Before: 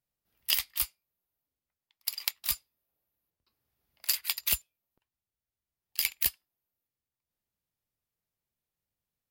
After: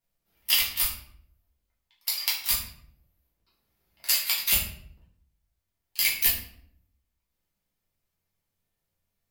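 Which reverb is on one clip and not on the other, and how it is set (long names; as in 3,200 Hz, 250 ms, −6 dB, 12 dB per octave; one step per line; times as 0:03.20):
rectangular room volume 100 cubic metres, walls mixed, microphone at 1.7 metres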